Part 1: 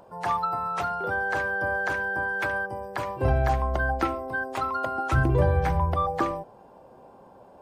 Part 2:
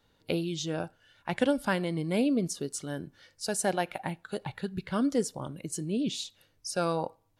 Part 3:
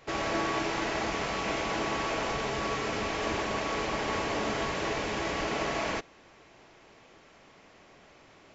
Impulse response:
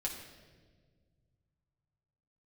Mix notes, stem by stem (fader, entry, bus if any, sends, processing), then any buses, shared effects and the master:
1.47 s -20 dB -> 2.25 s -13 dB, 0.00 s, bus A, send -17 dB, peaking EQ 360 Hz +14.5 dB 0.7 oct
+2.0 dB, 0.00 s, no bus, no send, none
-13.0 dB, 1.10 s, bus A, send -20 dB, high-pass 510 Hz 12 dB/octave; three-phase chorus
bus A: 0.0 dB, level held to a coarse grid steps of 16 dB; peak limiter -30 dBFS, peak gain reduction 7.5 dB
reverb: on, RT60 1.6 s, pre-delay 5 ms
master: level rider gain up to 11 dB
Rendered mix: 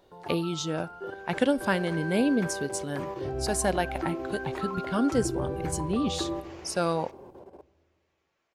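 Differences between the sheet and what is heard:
stem 1 -20.0 dB -> -8.5 dB; master: missing level rider gain up to 11 dB

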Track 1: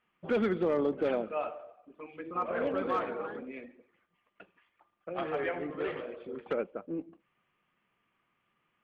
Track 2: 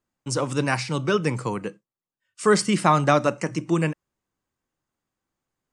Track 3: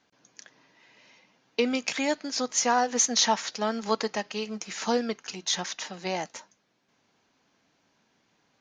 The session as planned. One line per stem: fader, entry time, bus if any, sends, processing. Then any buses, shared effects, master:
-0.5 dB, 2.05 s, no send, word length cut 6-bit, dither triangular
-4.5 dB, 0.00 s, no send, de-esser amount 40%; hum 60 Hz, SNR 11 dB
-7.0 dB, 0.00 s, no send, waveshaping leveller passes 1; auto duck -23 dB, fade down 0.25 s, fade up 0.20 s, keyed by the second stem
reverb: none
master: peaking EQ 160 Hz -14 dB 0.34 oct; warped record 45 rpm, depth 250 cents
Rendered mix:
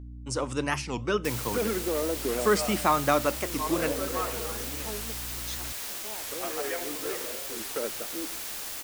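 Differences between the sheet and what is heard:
stem 1: entry 2.05 s -> 1.25 s; stem 3 -7.0 dB -> -16.5 dB

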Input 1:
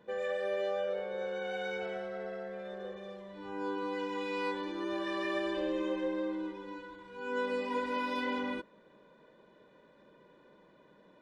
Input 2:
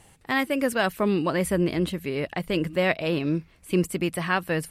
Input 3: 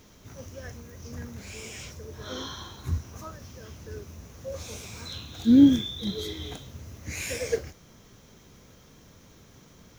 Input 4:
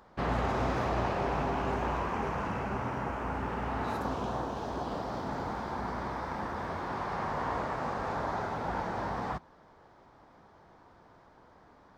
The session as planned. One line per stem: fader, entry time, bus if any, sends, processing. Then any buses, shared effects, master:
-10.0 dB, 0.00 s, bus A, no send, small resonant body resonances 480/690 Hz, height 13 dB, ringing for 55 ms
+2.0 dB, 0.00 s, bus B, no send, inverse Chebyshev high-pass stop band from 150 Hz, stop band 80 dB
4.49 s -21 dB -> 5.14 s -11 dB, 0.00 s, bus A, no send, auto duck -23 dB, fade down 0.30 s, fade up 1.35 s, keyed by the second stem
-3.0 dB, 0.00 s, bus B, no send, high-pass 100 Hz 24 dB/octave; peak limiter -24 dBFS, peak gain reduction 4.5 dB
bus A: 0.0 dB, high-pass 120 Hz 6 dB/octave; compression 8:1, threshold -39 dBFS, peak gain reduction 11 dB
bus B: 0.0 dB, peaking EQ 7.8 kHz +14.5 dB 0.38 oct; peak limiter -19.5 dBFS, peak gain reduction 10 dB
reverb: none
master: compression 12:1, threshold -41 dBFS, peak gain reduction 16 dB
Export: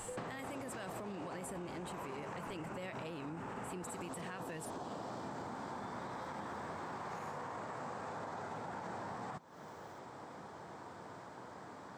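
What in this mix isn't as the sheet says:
stem 2: missing inverse Chebyshev high-pass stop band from 150 Hz, stop band 80 dB; stem 4 -3.0 dB -> +7.5 dB

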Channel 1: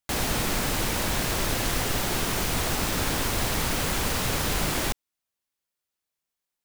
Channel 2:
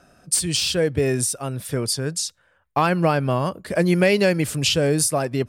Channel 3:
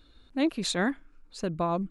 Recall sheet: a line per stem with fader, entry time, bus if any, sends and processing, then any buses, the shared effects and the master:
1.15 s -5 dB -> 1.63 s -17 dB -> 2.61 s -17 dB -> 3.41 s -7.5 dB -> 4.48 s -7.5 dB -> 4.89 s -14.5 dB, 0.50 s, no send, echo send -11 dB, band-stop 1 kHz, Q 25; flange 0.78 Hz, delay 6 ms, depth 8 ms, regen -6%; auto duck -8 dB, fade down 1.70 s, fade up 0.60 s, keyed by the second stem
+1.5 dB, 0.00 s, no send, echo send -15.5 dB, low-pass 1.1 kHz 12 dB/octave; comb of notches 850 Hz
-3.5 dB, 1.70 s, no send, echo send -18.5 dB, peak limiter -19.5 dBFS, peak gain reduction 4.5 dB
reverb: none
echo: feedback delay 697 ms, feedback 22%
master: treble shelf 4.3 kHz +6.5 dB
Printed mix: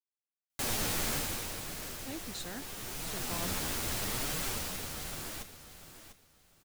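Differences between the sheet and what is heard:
stem 2: muted; stem 3 -3.5 dB -> -15.0 dB

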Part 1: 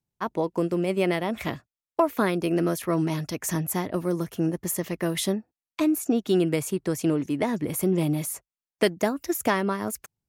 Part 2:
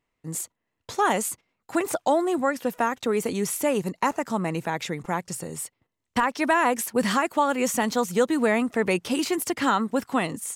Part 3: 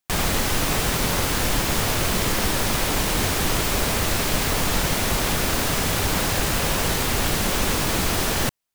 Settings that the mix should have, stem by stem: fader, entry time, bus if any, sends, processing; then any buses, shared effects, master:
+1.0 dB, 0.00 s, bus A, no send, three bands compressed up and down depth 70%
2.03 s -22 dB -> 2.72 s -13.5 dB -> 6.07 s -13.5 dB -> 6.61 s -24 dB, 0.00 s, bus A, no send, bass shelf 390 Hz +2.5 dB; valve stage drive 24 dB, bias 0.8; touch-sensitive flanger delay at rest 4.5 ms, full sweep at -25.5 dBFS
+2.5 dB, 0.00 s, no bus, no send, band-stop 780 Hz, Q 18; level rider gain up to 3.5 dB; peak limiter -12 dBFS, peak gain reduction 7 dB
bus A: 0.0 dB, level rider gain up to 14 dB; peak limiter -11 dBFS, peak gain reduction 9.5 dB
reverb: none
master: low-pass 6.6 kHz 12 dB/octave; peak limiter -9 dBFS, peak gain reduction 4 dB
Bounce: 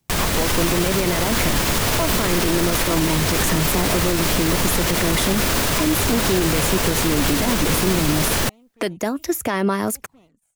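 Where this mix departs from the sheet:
stem 1 +1.0 dB -> -5.5 dB; stem 2 -22.0 dB -> -33.0 dB; master: missing low-pass 6.6 kHz 12 dB/octave

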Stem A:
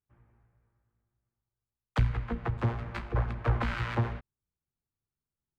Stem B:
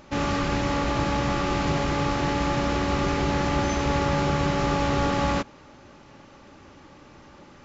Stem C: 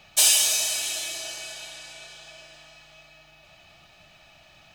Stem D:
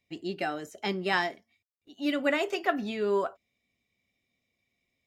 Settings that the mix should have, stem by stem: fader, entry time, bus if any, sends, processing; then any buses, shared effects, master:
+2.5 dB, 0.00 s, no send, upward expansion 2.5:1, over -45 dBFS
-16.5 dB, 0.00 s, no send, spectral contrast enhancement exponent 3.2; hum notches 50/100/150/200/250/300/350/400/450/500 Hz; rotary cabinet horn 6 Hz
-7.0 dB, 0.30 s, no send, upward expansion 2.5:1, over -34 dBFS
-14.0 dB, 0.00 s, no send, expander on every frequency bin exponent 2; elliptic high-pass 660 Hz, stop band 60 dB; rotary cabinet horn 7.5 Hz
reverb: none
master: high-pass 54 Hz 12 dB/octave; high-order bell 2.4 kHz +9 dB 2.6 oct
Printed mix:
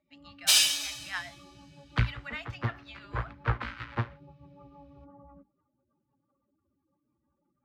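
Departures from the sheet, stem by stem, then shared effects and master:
stem B -16.5 dB -> -26.0 dB; stem D: missing expander on every frequency bin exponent 2

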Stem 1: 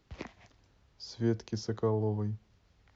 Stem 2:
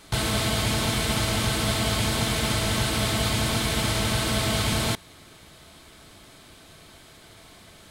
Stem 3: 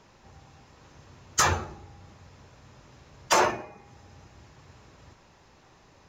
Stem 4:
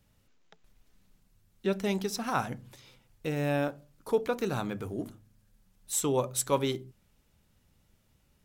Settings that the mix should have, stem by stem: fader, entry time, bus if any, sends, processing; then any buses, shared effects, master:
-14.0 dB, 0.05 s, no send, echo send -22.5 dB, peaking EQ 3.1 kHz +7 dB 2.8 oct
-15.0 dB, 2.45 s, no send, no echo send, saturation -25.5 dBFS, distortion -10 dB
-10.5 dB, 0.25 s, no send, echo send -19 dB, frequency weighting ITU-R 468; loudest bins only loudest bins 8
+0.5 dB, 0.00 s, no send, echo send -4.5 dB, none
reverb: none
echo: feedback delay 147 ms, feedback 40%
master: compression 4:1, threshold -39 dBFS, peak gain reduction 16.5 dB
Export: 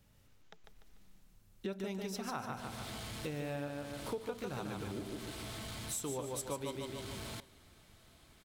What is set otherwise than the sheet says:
stem 1: muted; stem 3: muted

